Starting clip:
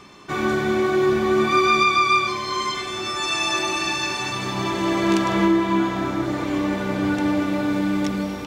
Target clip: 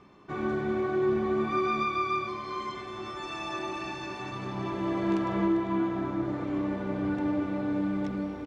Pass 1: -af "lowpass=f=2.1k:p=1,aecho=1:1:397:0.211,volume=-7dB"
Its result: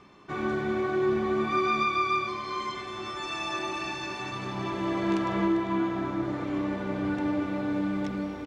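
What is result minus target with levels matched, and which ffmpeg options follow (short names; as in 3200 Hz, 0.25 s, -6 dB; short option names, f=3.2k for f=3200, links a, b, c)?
2000 Hz band +3.0 dB
-af "lowpass=f=1k:p=1,aecho=1:1:397:0.211,volume=-7dB"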